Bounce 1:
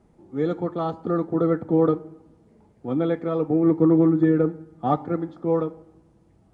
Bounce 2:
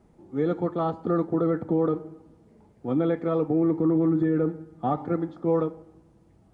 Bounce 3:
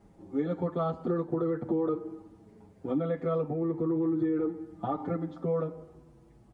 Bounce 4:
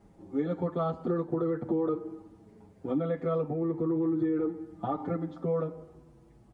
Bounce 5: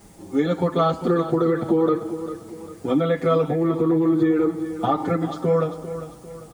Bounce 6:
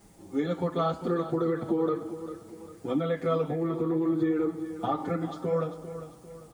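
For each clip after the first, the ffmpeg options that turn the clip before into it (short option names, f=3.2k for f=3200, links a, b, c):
-filter_complex "[0:a]acrossover=split=3200[a][b];[b]acompressor=threshold=-60dB:ratio=4:attack=1:release=60[c];[a][c]amix=inputs=2:normalize=0,alimiter=limit=-15.5dB:level=0:latency=1:release=35"
-filter_complex "[0:a]acompressor=threshold=-28dB:ratio=4,asplit=2[a][b];[b]adelay=6.9,afreqshift=-0.42[c];[a][c]amix=inputs=2:normalize=1,volume=4dB"
-af anull
-filter_complex "[0:a]crystalizer=i=7:c=0,asplit=2[a][b];[b]aecho=0:1:398|796|1194|1592:0.251|0.103|0.0422|0.0173[c];[a][c]amix=inputs=2:normalize=0,volume=8.5dB"
-af "flanger=delay=5.5:depth=8.7:regen=-76:speed=0.69:shape=triangular,volume=-3.5dB"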